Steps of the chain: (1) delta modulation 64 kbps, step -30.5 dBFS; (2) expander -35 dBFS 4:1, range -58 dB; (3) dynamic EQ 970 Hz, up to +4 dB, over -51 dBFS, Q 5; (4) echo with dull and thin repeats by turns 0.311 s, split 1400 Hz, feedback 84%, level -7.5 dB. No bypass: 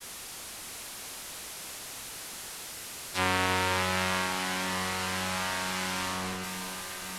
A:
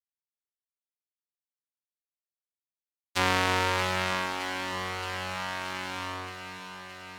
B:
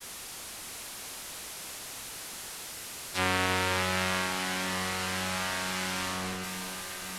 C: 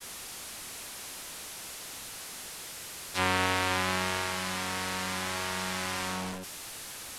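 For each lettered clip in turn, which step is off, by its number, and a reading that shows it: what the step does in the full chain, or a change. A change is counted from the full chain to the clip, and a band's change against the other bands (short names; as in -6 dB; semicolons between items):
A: 1, 8 kHz band -7.5 dB; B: 3, 1 kHz band -1.5 dB; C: 4, echo-to-direct -5.5 dB to none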